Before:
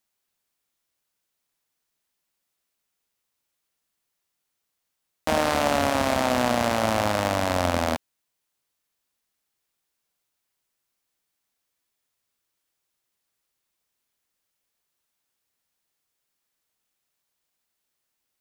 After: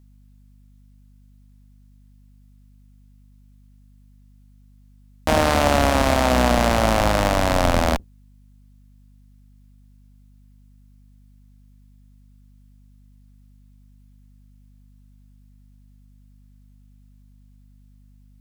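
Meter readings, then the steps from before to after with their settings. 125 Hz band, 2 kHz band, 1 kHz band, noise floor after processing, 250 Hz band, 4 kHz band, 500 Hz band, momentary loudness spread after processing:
+8.5 dB, +4.0 dB, +4.0 dB, -51 dBFS, +4.5 dB, +4.0 dB, +4.0 dB, 4 LU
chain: octaver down 2 oct, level +2 dB; hum 50 Hz, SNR 25 dB; gain +4 dB

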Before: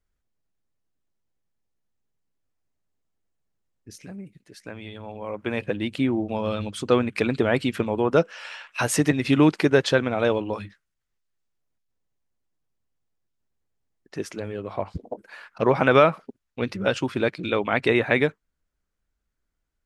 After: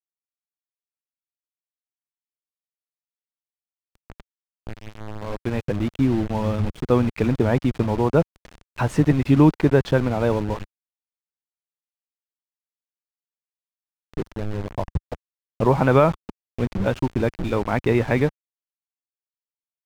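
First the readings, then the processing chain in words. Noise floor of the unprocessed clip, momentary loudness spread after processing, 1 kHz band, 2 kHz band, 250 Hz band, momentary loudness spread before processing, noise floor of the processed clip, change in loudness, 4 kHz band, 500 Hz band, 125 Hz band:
-79 dBFS, 18 LU, +0.5 dB, -5.0 dB, +3.0 dB, 20 LU, under -85 dBFS, +1.5 dB, -7.0 dB, 0.0 dB, +7.5 dB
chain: dynamic EQ 920 Hz, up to +7 dB, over -41 dBFS, Q 2.7; bit-crush 5-bit; RIAA curve playback; gain -3.5 dB

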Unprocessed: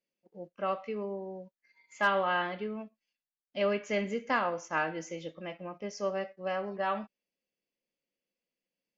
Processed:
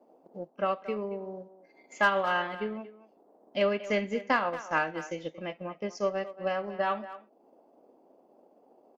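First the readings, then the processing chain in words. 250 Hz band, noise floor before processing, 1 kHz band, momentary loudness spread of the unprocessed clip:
+2.0 dB, under -85 dBFS, +2.0 dB, 14 LU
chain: band noise 230–780 Hz -63 dBFS; in parallel at -12 dB: soft clip -29 dBFS, distortion -10 dB; on the sum: transient shaper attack +4 dB, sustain -6 dB; speakerphone echo 0.23 s, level -14 dB

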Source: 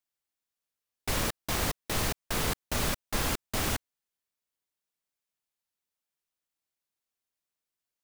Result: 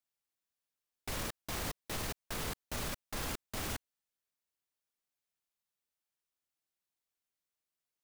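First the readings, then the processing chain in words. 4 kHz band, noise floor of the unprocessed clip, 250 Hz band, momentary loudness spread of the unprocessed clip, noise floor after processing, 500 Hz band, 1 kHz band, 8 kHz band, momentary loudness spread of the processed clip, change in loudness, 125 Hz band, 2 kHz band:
-8.5 dB, under -85 dBFS, -9.0 dB, 2 LU, under -85 dBFS, -8.5 dB, -8.5 dB, -8.5 dB, 1 LU, -8.5 dB, -9.0 dB, -8.5 dB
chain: limiter -25.5 dBFS, peak gain reduction 8.5 dB; gain -3 dB

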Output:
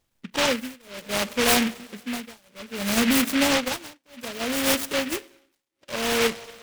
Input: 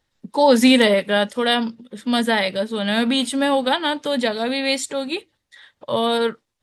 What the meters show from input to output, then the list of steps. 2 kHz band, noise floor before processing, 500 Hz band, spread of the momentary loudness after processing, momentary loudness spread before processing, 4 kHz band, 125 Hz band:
-3.5 dB, -75 dBFS, -8.5 dB, 17 LU, 12 LU, -4.5 dB, n/a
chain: high shelf 8600 Hz -9 dB; spring tank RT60 2.3 s, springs 33/40/45 ms, chirp 60 ms, DRR 18 dB; tremolo 0.62 Hz, depth 99%; noise-modulated delay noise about 2100 Hz, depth 0.23 ms

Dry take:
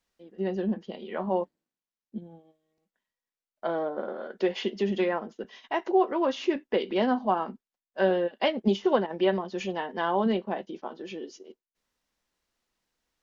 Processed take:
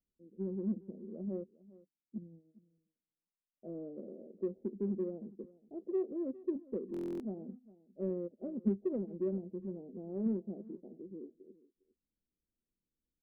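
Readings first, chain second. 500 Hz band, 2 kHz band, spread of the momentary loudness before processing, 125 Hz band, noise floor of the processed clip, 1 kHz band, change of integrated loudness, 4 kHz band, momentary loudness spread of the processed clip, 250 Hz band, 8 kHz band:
-12.5 dB, under -35 dB, 14 LU, -5.5 dB, under -85 dBFS, -32.5 dB, -11.5 dB, under -35 dB, 14 LU, -7.5 dB, n/a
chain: Gaussian blur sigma 25 samples; low shelf 160 Hz -5 dB; in parallel at -11.5 dB: soft clip -35.5 dBFS, distortion -8 dB; on the sum: echo 0.406 s -20 dB; stuck buffer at 6.92, samples 1024, times 11; gain -2.5 dB

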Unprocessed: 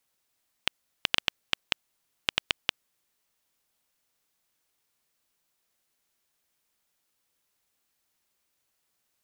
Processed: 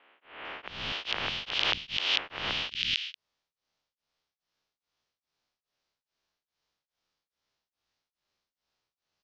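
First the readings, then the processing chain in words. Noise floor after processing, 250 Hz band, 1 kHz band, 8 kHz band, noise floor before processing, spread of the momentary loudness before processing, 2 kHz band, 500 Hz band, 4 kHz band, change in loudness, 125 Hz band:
under -85 dBFS, +2.0 dB, +3.5 dB, -4.0 dB, -77 dBFS, 6 LU, +1.5 dB, +3.5 dB, +2.5 dB, +1.5 dB, +4.5 dB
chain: spectral swells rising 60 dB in 1.14 s; steep low-pass 5600 Hz 36 dB/oct; vocal rider 0.5 s; three bands offset in time mids, lows, highs 0.24/0.45 s, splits 260/2100 Hz; beating tremolo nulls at 2.4 Hz

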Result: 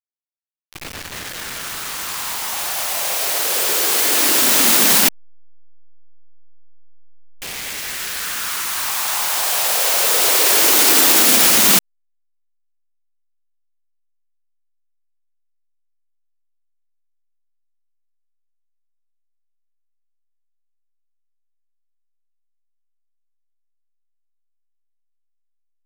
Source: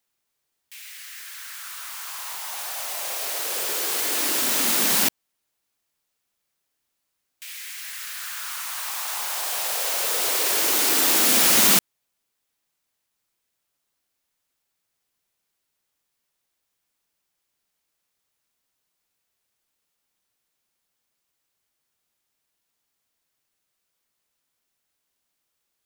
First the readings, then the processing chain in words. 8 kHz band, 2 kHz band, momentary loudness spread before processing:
+7.0 dB, +7.5 dB, 20 LU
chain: level-crossing sampler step -32 dBFS; maximiser +9.5 dB; gain -1 dB

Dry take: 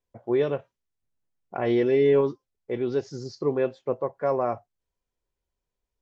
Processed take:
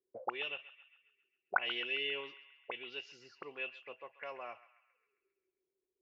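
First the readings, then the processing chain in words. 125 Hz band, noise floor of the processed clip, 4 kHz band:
-34.5 dB, under -85 dBFS, +5.5 dB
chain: auto-wah 370–2800 Hz, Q 21, up, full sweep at -28.5 dBFS; narrowing echo 0.134 s, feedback 57%, band-pass 2000 Hz, level -14.5 dB; gain +17.5 dB

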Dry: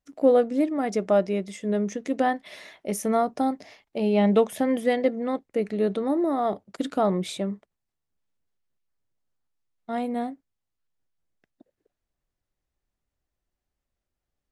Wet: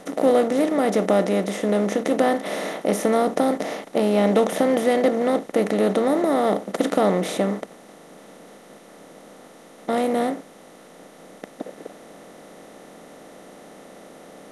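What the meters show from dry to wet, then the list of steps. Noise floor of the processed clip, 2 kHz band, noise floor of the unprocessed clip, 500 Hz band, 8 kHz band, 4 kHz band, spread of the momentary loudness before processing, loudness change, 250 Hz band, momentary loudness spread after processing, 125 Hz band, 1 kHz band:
-47 dBFS, +6.5 dB, -85 dBFS, +4.5 dB, +6.0 dB, +6.5 dB, 12 LU, +4.0 dB, +3.5 dB, 9 LU, +3.0 dB, +4.0 dB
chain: per-bin compression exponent 0.4; gain -1.5 dB

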